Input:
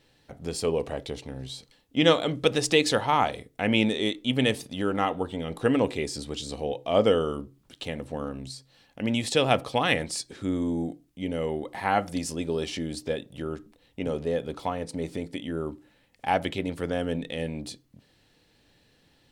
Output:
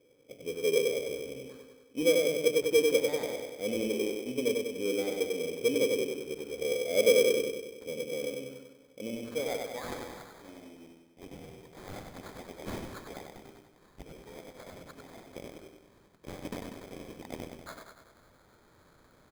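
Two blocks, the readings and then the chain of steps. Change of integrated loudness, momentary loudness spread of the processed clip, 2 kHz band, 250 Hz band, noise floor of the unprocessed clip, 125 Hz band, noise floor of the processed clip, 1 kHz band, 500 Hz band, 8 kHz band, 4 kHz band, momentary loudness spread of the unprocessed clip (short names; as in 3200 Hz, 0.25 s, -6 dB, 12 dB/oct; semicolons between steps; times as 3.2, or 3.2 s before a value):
-3.0 dB, 23 LU, -6.5 dB, -9.5 dB, -64 dBFS, -15.0 dB, -62 dBFS, -18.0 dB, -1.5 dB, -2.5 dB, -7.5 dB, 14 LU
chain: G.711 law mismatch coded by mu; soft clip -12 dBFS, distortion -19 dB; band-pass sweep 500 Hz -> 3000 Hz, 9.01–10.8; band shelf 1100 Hz -13.5 dB; on a send: feedback echo 96 ms, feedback 58%, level -3.5 dB; on the sum: sample-rate reducer 2800 Hz, jitter 0%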